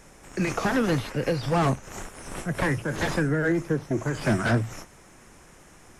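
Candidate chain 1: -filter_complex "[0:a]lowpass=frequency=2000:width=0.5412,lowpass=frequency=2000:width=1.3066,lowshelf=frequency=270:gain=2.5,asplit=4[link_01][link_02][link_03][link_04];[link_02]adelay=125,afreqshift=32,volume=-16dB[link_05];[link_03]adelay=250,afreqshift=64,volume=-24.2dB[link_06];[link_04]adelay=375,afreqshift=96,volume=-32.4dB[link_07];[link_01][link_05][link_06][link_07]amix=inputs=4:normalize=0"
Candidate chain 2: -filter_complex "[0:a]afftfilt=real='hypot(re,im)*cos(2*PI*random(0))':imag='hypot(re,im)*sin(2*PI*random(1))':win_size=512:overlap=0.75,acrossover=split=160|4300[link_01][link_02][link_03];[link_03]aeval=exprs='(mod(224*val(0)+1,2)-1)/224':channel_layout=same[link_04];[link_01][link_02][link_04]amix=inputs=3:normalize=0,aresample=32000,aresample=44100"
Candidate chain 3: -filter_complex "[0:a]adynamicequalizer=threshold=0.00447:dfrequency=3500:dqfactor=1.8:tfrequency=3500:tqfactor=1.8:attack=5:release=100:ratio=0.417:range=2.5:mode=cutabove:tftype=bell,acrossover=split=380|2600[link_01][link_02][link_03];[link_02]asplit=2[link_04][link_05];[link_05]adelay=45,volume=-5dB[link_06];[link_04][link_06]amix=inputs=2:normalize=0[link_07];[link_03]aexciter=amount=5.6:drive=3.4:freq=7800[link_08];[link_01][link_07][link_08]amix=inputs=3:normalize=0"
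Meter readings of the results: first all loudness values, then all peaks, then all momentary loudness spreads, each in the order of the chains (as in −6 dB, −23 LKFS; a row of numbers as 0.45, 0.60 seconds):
−25.5, −32.5, −26.0 LKFS; −11.5, −15.0, −10.5 dBFS; 13, 13, 11 LU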